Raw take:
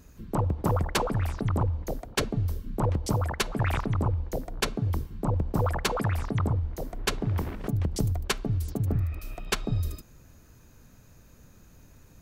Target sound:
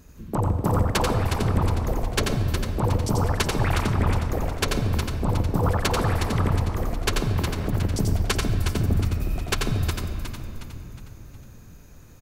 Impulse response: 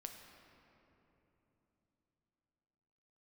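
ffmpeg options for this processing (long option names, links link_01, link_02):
-filter_complex "[0:a]asplit=6[link_01][link_02][link_03][link_04][link_05][link_06];[link_02]adelay=363,afreqshift=-52,volume=-7dB[link_07];[link_03]adelay=726,afreqshift=-104,volume=-13.9dB[link_08];[link_04]adelay=1089,afreqshift=-156,volume=-20.9dB[link_09];[link_05]adelay=1452,afreqshift=-208,volume=-27.8dB[link_10];[link_06]adelay=1815,afreqshift=-260,volume=-34.7dB[link_11];[link_01][link_07][link_08][link_09][link_10][link_11]amix=inputs=6:normalize=0,asplit=2[link_12][link_13];[1:a]atrim=start_sample=2205,adelay=88[link_14];[link_13][link_14]afir=irnorm=-1:irlink=0,volume=2dB[link_15];[link_12][link_15]amix=inputs=2:normalize=0,volume=2dB"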